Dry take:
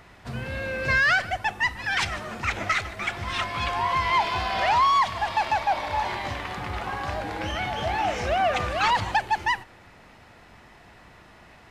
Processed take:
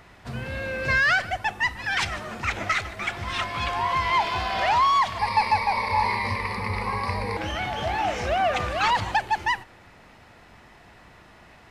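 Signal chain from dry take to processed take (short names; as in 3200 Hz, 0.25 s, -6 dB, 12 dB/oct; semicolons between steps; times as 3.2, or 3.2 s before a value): 5.19–7.37 ripple EQ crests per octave 0.9, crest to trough 18 dB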